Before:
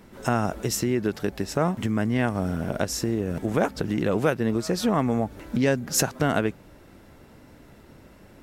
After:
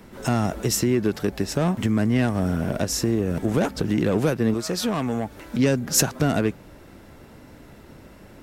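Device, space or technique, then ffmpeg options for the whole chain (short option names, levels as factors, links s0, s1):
one-band saturation: -filter_complex "[0:a]acrossover=split=370|3000[s0][s1][s2];[s1]asoftclip=type=tanh:threshold=0.0473[s3];[s0][s3][s2]amix=inputs=3:normalize=0,asettb=1/sr,asplit=3[s4][s5][s6];[s4]atrim=end=4.544[s7];[s5]atrim=start=4.54:end=5.59,asetpts=PTS-STARTPTS,afade=t=in:d=0.004:c=qsin,afade=t=out:st=1.046:d=0.004:c=qsin,lowshelf=f=500:g=-6.5[s8];[s6]atrim=start=5.586[s9];[s7][s8]acrossfade=d=0.004:c1=hsin:c2=qsin[s10];[s10][s9]acrossfade=d=0.004:c1=qsin:c2=hsin,volume=1.58"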